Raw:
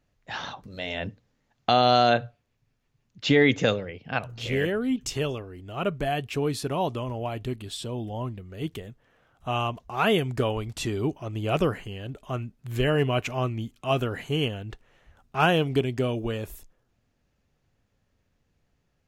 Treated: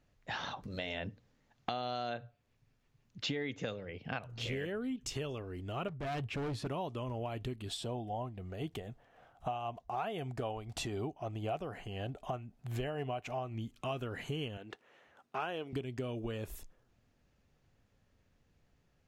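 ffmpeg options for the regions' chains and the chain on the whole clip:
ffmpeg -i in.wav -filter_complex "[0:a]asettb=1/sr,asplit=3[link_01][link_02][link_03];[link_01]atrim=end=5.884[link_04];[link_02]atrim=start=5.88:end=6.67,asetpts=PTS-STARTPTS,afade=type=in:duration=0.004:curve=qsin,afade=type=out:start_time=0.786:duration=0.004:curve=qsin,lowpass=frequency=2100:poles=1,equalizer=frequency=110:width_type=o:width=0.6:gain=6.5,asoftclip=type=hard:threshold=-30dB[link_05];[link_03]atrim=start=6.666[link_06];[link_04][link_05]acrossfade=duration=0.004:curve1=hsin:curve2=qsin[link_07];[link_07][link_06]acrossfade=duration=0.004:curve1=qsin:curve2=hsin,asettb=1/sr,asplit=3[link_08][link_09][link_10];[link_08]atrim=end=7.694[link_11];[link_09]atrim=start=7.69:end=13.55,asetpts=PTS-STARTPTS,afade=type=in:duration=0.004:curve=qsin,afade=type=out:start_time=5.856:duration=0.004:curve=qsin,equalizer=frequency=730:width_type=o:width=0.49:gain=11.5,tremolo=f=3.9:d=0.44[link_12];[link_10]atrim=start=13.546[link_13];[link_11][link_12]acrossfade=duration=0.004:curve1=hsin:curve2=qsin[link_14];[link_14][link_13]acrossfade=duration=0.004:curve1=qsin:curve2=hsin,asettb=1/sr,asplit=3[link_15][link_16][link_17];[link_15]atrim=end=14.574[link_18];[link_16]atrim=start=14.57:end=15.73,asetpts=PTS-STARTPTS,afade=type=in:duration=0.004:curve=qsin,afade=type=out:start_time=1.156:duration=0.004:curve=qsin,highpass=300,highshelf=frequency=4200:gain=-5.5[link_19];[link_17]atrim=start=15.726[link_20];[link_18][link_19]acrossfade=duration=0.004:curve1=hsin:curve2=qsin[link_21];[link_21][link_20]acrossfade=duration=0.004:curve1=qsin:curve2=hsin,highshelf=frequency=11000:gain=-6.5,acompressor=threshold=-36dB:ratio=6" out.wav

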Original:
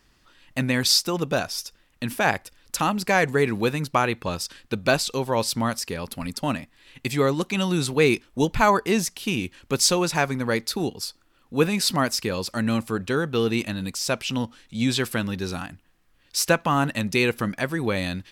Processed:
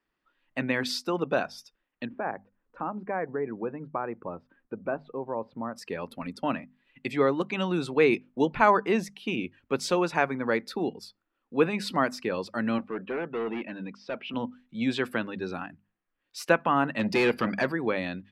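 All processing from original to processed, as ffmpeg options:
ffmpeg -i in.wav -filter_complex "[0:a]asettb=1/sr,asplit=3[link_01][link_02][link_03];[link_01]atrim=end=2.054[link_04];[link_02]atrim=start=2.05:end=5.76,asetpts=PTS-STARTPTS,afade=type=in:duration=0.004:curve=qsin,afade=type=out:start_time=3.706:duration=0.004:curve=qsin,lowpass=1300,acompressor=threshold=-36dB:ratio=1.5:attack=3.2:release=140:knee=1:detection=peak[link_05];[link_03]atrim=start=5.756[link_06];[link_04][link_05]acrossfade=duration=0.004:curve1=hsin:curve2=qsin[link_07];[link_07][link_06]acrossfade=duration=0.004:curve1=qsin:curve2=hsin,asettb=1/sr,asplit=3[link_08][link_09][link_10];[link_08]atrim=end=12.784[link_11];[link_09]atrim=start=12.78:end=14.34,asetpts=PTS-STARTPTS,afade=type=in:duration=0.004:curve=qsin,afade=type=out:start_time=1.556:duration=0.004:curve=qsin,highpass=160,lowpass=3100,asoftclip=type=hard:threshold=-26dB[link_12];[link_10]atrim=start=14.336[link_13];[link_11][link_12]acrossfade=duration=0.004:curve1=hsin:curve2=qsin[link_14];[link_14][link_13]acrossfade=duration=0.004:curve1=qsin:curve2=hsin,asettb=1/sr,asplit=3[link_15][link_16][link_17];[link_15]atrim=end=16.994[link_18];[link_16]atrim=start=16.99:end=17.72,asetpts=PTS-STARTPTS,afade=type=in:duration=0.004:curve=qsin,afade=type=out:start_time=0.726:duration=0.004:curve=qsin,acontrast=44,equalizer=frequency=4700:width=6.5:gain=13.5,asoftclip=type=hard:threshold=-17dB[link_19];[link_17]atrim=start=17.716[link_20];[link_18][link_19]acrossfade=duration=0.004:curve1=hsin:curve2=qsin[link_21];[link_21][link_20]acrossfade=duration=0.004:curve1=qsin:curve2=hsin,afftdn=noise_reduction=14:noise_floor=-42,acrossover=split=180 3000:gain=0.158 1 0.141[link_22][link_23][link_24];[link_22][link_23][link_24]amix=inputs=3:normalize=0,bandreject=frequency=50:width_type=h:width=6,bandreject=frequency=100:width_type=h:width=6,bandreject=frequency=150:width_type=h:width=6,bandreject=frequency=200:width_type=h:width=6,bandreject=frequency=250:width_type=h:width=6,volume=-1.5dB" out.wav

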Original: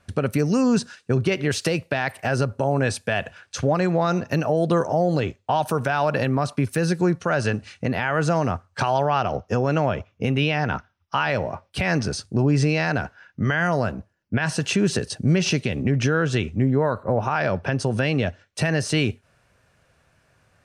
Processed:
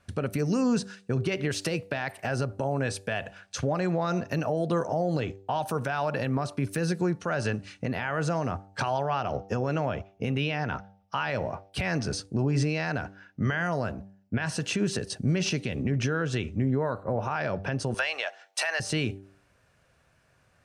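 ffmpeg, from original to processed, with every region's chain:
ffmpeg -i in.wav -filter_complex "[0:a]asettb=1/sr,asplit=3[link_01][link_02][link_03];[link_01]atrim=end=17.944[link_04];[link_02]atrim=start=17.94:end=18.8,asetpts=PTS-STARTPTS,afade=type=in:duration=0.004:curve=qsin,afade=type=out:start_time=0.856:duration=0.004:curve=qsin,highpass=frequency=710:width=0.5412,highpass=frequency=710:width=1.3066,acontrast=89[link_05];[link_03]atrim=start=18.796[link_06];[link_04][link_05]acrossfade=duration=0.004:curve1=hsin:curve2=qsin[link_07];[link_07][link_06]acrossfade=duration=0.004:curve1=qsin:curve2=hsin,bandreject=frequency=97.43:width_type=h:width=4,bandreject=frequency=194.86:width_type=h:width=4,bandreject=frequency=292.29:width_type=h:width=4,bandreject=frequency=389.72:width_type=h:width=4,bandreject=frequency=487.15:width_type=h:width=4,bandreject=frequency=584.58:width_type=h:width=4,bandreject=frequency=682.01:width_type=h:width=4,bandreject=frequency=779.44:width_type=h:width=4,bandreject=frequency=876.87:width_type=h:width=4,alimiter=limit=-14dB:level=0:latency=1:release=165,volume=-3.5dB" out.wav

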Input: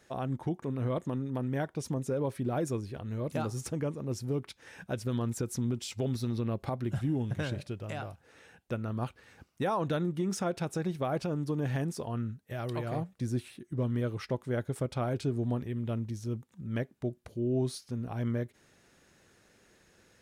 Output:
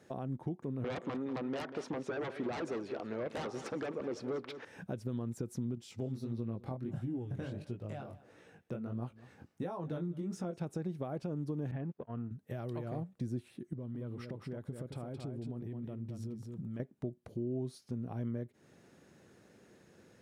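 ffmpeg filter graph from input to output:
ffmpeg -i in.wav -filter_complex "[0:a]asettb=1/sr,asplit=3[link_01][link_02][link_03];[link_01]atrim=end=0.844[link_04];[link_02]atrim=start=0.84:end=4.65,asetpts=PTS-STARTPTS,afade=type=in:duration=0.004:curve=qsin,afade=type=out:start_time=3.806:duration=0.004:curve=qsin,highpass=570,lowpass=3200,aeval=exprs='0.0631*sin(PI/2*5.01*val(0)/0.0631)':channel_layout=same,aecho=1:1:189|378|567:0.211|0.0507|0.0122,atrim=end_sample=168021[link_05];[link_03]atrim=start=4.646[link_06];[link_04][link_05]acrossfade=duration=0.004:curve1=hsin:curve2=qsin[link_07];[link_07][link_06]acrossfade=duration=0.004:curve1=qsin:curve2=hsin,asettb=1/sr,asplit=3[link_08][link_09][link_10];[link_08]atrim=end=5.754[link_11];[link_09]atrim=start=5.75:end=10.59,asetpts=PTS-STARTPTS,afade=type=in:duration=0.004:curve=qsin,afade=type=out:start_time=4.836:duration=0.004:curve=qsin,flanger=delay=16.5:depth=7.1:speed=1.5,aecho=1:1:202:0.0668,atrim=end_sample=213444[link_12];[link_10]atrim=start=10.586[link_13];[link_11][link_12]acrossfade=duration=0.004:curve1=hsin:curve2=qsin[link_14];[link_14][link_13]acrossfade=duration=0.004:curve1=qsin:curve2=hsin,asettb=1/sr,asplit=3[link_15][link_16][link_17];[link_15]atrim=end=11.714[link_18];[link_16]atrim=start=11.71:end=12.31,asetpts=PTS-STARTPTS,afade=type=in:duration=0.004:curve=qsin,afade=type=out:start_time=0.596:duration=0.004:curve=qsin,aeval=exprs='if(lt(val(0),0),0.447*val(0),val(0))':channel_layout=same,agate=range=-27dB:threshold=-39dB:ratio=16:release=100:detection=peak,lowpass=frequency=2900:width=0.5412,lowpass=frequency=2900:width=1.3066[link_19];[link_17]atrim=start=12.306[link_20];[link_18][link_19]acrossfade=duration=0.004:curve1=hsin:curve2=qsin[link_21];[link_21][link_20]acrossfade=duration=0.004:curve1=qsin:curve2=hsin,asettb=1/sr,asplit=3[link_22][link_23][link_24];[link_22]atrim=end=13.734[link_25];[link_23]atrim=start=13.73:end=16.8,asetpts=PTS-STARTPTS,afade=type=in:duration=0.004:curve=qsin,afade=type=out:start_time=3.066:duration=0.004:curve=qsin,bandreject=frequency=6300:width=9.2,acompressor=threshold=-41dB:ratio=4:attack=3.2:release=140:knee=1:detection=peak,aecho=1:1:219:0.501,atrim=end_sample=135387[link_26];[link_24]atrim=start=16.796[link_27];[link_25][link_26]acrossfade=duration=0.004:curve1=hsin:curve2=qsin[link_28];[link_28][link_27]acrossfade=duration=0.004:curve1=qsin:curve2=hsin,highpass=120,acompressor=threshold=-45dB:ratio=2.5,tiltshelf=frequency=800:gain=6,volume=1dB" out.wav

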